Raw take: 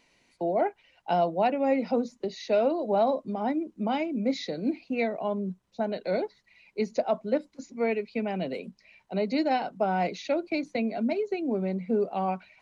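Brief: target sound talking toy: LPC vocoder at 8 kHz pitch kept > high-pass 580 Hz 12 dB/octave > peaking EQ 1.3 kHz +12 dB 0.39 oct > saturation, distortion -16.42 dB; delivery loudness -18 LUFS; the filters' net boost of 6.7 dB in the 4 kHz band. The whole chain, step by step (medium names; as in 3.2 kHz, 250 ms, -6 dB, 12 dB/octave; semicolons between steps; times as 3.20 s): peaking EQ 4 kHz +7.5 dB; LPC vocoder at 8 kHz pitch kept; high-pass 580 Hz 12 dB/octave; peaking EQ 1.3 kHz +12 dB 0.39 oct; saturation -21.5 dBFS; trim +16 dB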